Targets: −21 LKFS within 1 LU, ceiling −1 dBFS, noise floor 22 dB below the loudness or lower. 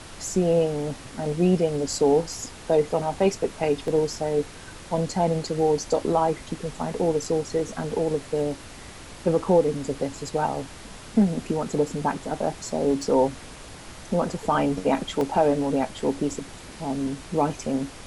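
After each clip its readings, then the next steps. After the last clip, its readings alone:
number of dropouts 3; longest dropout 1.4 ms; background noise floor −42 dBFS; target noise floor −47 dBFS; integrated loudness −25.0 LKFS; sample peak −8.5 dBFS; target loudness −21.0 LKFS
→ repair the gap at 0:03.88/0:13.02/0:15.21, 1.4 ms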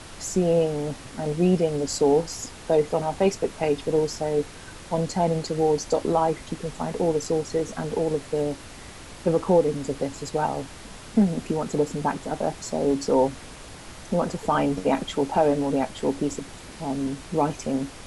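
number of dropouts 0; background noise floor −42 dBFS; target noise floor −47 dBFS
→ noise reduction from a noise print 6 dB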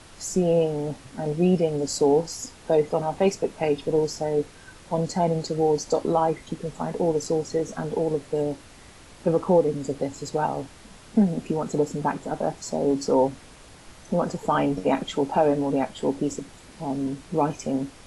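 background noise floor −48 dBFS; integrated loudness −25.0 LKFS; sample peak −8.5 dBFS; target loudness −21.0 LKFS
→ level +4 dB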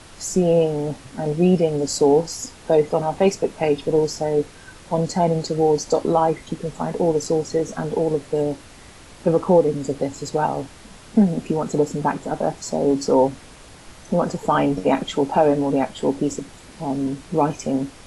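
integrated loudness −21.0 LKFS; sample peak −4.5 dBFS; background noise floor −44 dBFS

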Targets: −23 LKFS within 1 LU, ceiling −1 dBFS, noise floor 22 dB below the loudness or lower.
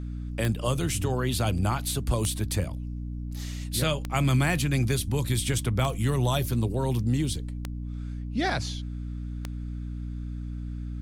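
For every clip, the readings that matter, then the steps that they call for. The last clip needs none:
number of clicks 6; mains hum 60 Hz; hum harmonics up to 300 Hz; level of the hum −31 dBFS; integrated loudness −28.5 LKFS; sample peak −10.0 dBFS; target loudness −23.0 LKFS
→ click removal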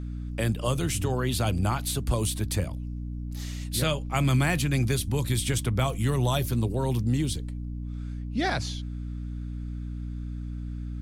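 number of clicks 0; mains hum 60 Hz; hum harmonics up to 300 Hz; level of the hum −31 dBFS
→ hum removal 60 Hz, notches 5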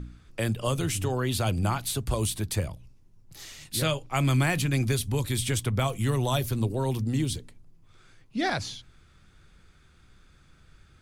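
mains hum none found; integrated loudness −28.0 LKFS; sample peak −13.5 dBFS; target loudness −23.0 LKFS
→ level +5 dB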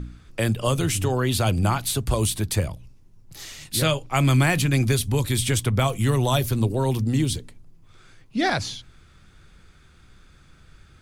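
integrated loudness −23.0 LKFS; sample peak −8.5 dBFS; background noise floor −53 dBFS

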